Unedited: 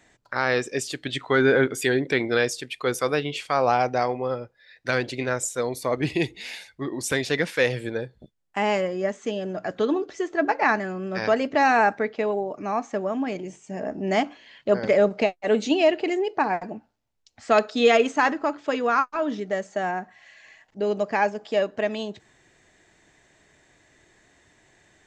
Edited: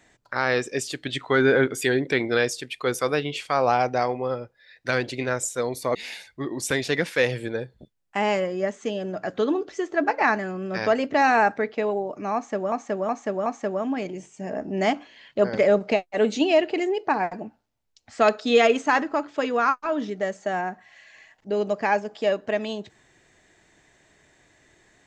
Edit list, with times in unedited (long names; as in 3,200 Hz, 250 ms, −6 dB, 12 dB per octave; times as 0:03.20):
0:05.95–0:06.36: remove
0:12.76–0:13.13: repeat, 4 plays